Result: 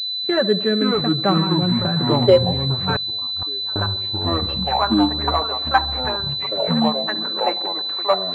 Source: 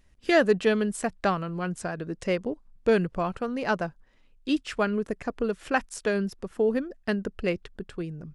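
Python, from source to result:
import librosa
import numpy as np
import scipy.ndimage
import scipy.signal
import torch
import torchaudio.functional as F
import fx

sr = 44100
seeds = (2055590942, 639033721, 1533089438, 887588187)

p1 = fx.low_shelf(x, sr, hz=160.0, db=-7.5)
p2 = p1 + 0.93 * np.pad(p1, (int(5.2 * sr / 1000.0), 0))[:len(p1)]
p3 = fx.rider(p2, sr, range_db=5, speed_s=0.5)
p4 = p2 + (p3 * librosa.db_to_amplitude(-1.5))
p5 = fx.filter_sweep_highpass(p4, sr, from_hz=120.0, to_hz=950.0, start_s=1.85, end_s=2.57, q=5.1)
p6 = p5 + fx.echo_tape(p5, sr, ms=71, feedback_pct=66, wet_db=-15, lp_hz=1300.0, drive_db=2.0, wow_cents=27, dry=0)
p7 = fx.echo_pitch(p6, sr, ms=423, semitones=-5, count=3, db_per_echo=-3.0)
p8 = fx.gate_flip(p7, sr, shuts_db=-11.0, range_db=-26, at=(2.96, 3.76))
p9 = fx.pwm(p8, sr, carrier_hz=4000.0)
y = p9 * librosa.db_to_amplitude(-4.0)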